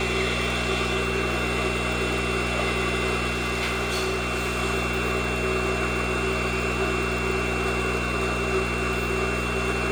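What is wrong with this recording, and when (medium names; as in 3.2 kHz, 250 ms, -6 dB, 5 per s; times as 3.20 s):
crackle 110 per s -31 dBFS
hum 60 Hz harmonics 4 -30 dBFS
whine 2.7 kHz -31 dBFS
3.30–4.60 s: clipped -22 dBFS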